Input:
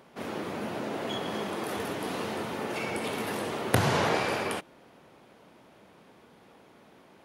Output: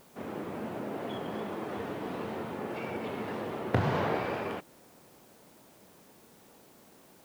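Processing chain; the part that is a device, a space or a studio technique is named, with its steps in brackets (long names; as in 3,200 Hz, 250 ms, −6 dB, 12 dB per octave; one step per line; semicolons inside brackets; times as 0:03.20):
cassette deck with a dirty head (head-to-tape spacing loss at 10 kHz 28 dB; tape wow and flutter; white noise bed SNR 26 dB)
level −1.5 dB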